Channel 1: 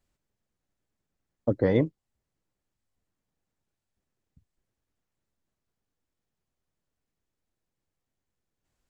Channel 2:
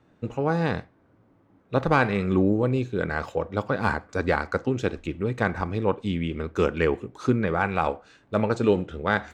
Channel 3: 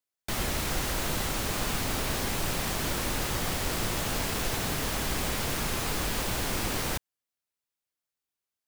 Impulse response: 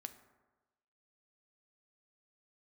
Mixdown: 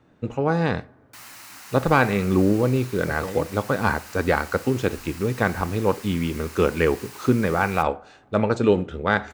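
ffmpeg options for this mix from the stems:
-filter_complex "[0:a]adelay=1600,volume=0.355[s0];[1:a]volume=1.12,asplit=2[s1][s2];[s2]volume=0.376[s3];[2:a]highpass=f=870:w=0.5412,highpass=f=870:w=1.3066,equalizer=f=3400:t=o:w=0.25:g=-8,adelay=850,volume=0.355[s4];[3:a]atrim=start_sample=2205[s5];[s3][s5]afir=irnorm=-1:irlink=0[s6];[s0][s1][s4][s6]amix=inputs=4:normalize=0"

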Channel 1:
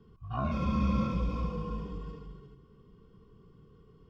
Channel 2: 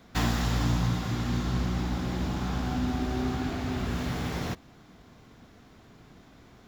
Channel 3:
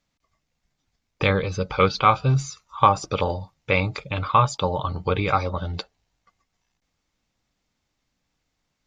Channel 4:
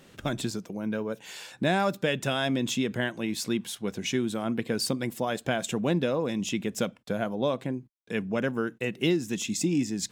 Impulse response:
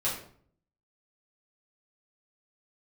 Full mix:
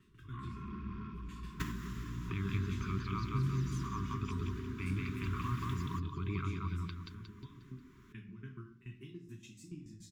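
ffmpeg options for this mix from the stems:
-filter_complex "[0:a]asoftclip=type=tanh:threshold=0.0316,volume=0.316,asplit=2[s0][s1];[s1]volume=0.2[s2];[1:a]equalizer=f=4400:w=1.4:g=-8.5,acompressor=threshold=0.0251:ratio=6,adelay=1450,volume=1.06[s3];[2:a]acrossover=split=370[s4][s5];[s5]acompressor=threshold=0.0158:ratio=2[s6];[s4][s6]amix=inputs=2:normalize=0,adelay=1100,volume=0.355,asplit=2[s7][s8];[s8]volume=0.447[s9];[3:a]equalizer=f=100:t=o:w=0.45:g=10.5,acrossover=split=150[s10][s11];[s11]acompressor=threshold=0.0158:ratio=5[s12];[s10][s12]amix=inputs=2:normalize=0,aeval=exprs='val(0)*pow(10,-21*if(lt(mod(7*n/s,1),2*abs(7)/1000),1-mod(7*n/s,1)/(2*abs(7)/1000),(mod(7*n/s,1)-2*abs(7)/1000)/(1-2*abs(7)/1000))/20)':c=same,volume=0.211,asplit=3[s13][s14][s15];[s14]volume=0.531[s16];[s15]apad=whole_len=358253[s17];[s3][s17]sidechaincompress=threshold=0.00158:ratio=8:attack=35:release=1230[s18];[s0][s7][s13]amix=inputs=3:normalize=0,lowpass=2700,alimiter=level_in=1.58:limit=0.0631:level=0:latency=1,volume=0.631,volume=1[s19];[4:a]atrim=start_sample=2205[s20];[s16][s20]afir=irnorm=-1:irlink=0[s21];[s2][s9]amix=inputs=2:normalize=0,aecho=0:1:179|358|537|716|895|1074:1|0.45|0.202|0.0911|0.041|0.0185[s22];[s18][s19][s21][s22]amix=inputs=4:normalize=0,afftfilt=real='re*(1-between(b*sr/4096,420,940))':imag='im*(1-between(b*sr/4096,420,940))':win_size=4096:overlap=0.75"

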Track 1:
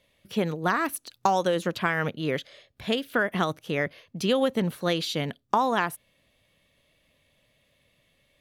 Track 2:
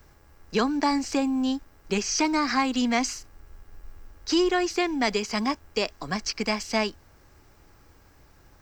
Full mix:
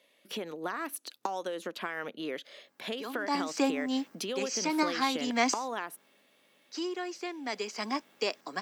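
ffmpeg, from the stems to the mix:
-filter_complex "[0:a]acompressor=threshold=0.0224:ratio=6,volume=1.12,asplit=2[s0][s1];[1:a]aeval=exprs='val(0)+0.00282*(sin(2*PI*50*n/s)+sin(2*PI*2*50*n/s)/2+sin(2*PI*3*50*n/s)/3+sin(2*PI*4*50*n/s)/4+sin(2*PI*5*50*n/s)/5)':c=same,adelay=2450,volume=2.24,afade=t=in:st=3.15:d=0.25:silence=0.237137,afade=t=out:st=5.48:d=0.77:silence=0.266073,afade=t=in:st=7.38:d=0.65:silence=0.398107[s2];[s1]apad=whole_len=488118[s3];[s2][s3]sidechaincompress=threshold=0.0112:ratio=8:attack=47:release=232[s4];[s0][s4]amix=inputs=2:normalize=0,highpass=f=250:w=0.5412,highpass=f=250:w=1.3066"

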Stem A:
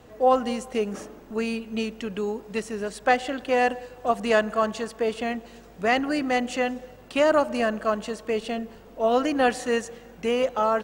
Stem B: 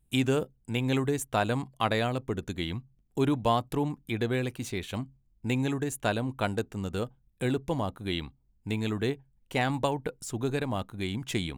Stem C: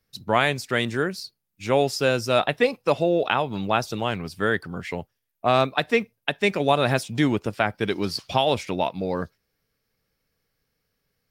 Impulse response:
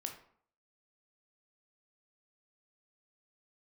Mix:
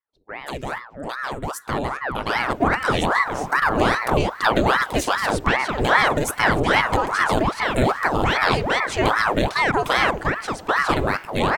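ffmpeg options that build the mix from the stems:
-filter_complex "[0:a]acompressor=threshold=0.0562:ratio=2.5,adelay=2400,volume=0.891[s0];[1:a]alimiter=limit=0.0891:level=0:latency=1:release=267,adelay=350,volume=1.26,asplit=3[s1][s2][s3];[s1]atrim=end=10.11,asetpts=PTS-STARTPTS,afade=t=out:st=10.106:d=0.004:c=hsin[s4];[s2]atrim=start=10.11:end=10.69,asetpts=PTS-STARTPTS,volume=0[s5];[s3]atrim=start=10.69,asetpts=PTS-STARTPTS,afade=t=in:d=0.004:c=hsin[s6];[s4][s5][s6]concat=n=3:v=0:a=1,asplit=2[s7][s8];[s8]volume=0.376[s9];[2:a]bandpass=f=440:t=q:w=1.5:csg=0,volume=0.422,asplit=2[s10][s11];[s11]volume=0.237[s12];[3:a]atrim=start_sample=2205[s13];[s9][s12]amix=inputs=2:normalize=0[s14];[s14][s13]afir=irnorm=-1:irlink=0[s15];[s0][s7][s10][s15]amix=inputs=4:normalize=0,dynaudnorm=f=680:g=7:m=4.22,aeval=exprs='val(0)*sin(2*PI*850*n/s+850*0.85/2.5*sin(2*PI*2.5*n/s))':c=same"

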